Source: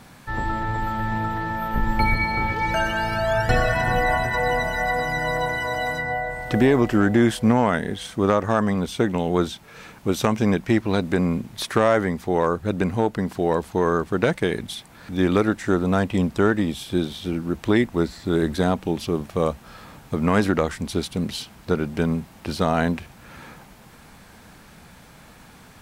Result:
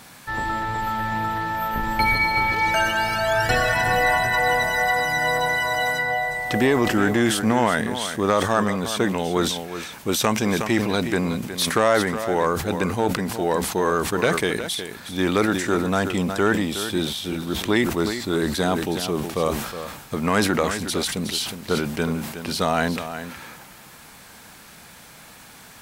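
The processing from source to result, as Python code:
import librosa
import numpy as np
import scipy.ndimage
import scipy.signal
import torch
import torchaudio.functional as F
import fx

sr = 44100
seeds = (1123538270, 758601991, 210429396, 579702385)

p1 = x + 10.0 ** (-11.5 / 20.0) * np.pad(x, (int(365 * sr / 1000.0), 0))[:len(x)]
p2 = 10.0 ** (-15.5 / 20.0) * np.tanh(p1 / 10.0 ** (-15.5 / 20.0))
p3 = p1 + (p2 * 10.0 ** (-8.5 / 20.0))
p4 = fx.tilt_eq(p3, sr, slope=2.0)
p5 = fx.sustainer(p4, sr, db_per_s=59.0)
y = p5 * 10.0 ** (-1.0 / 20.0)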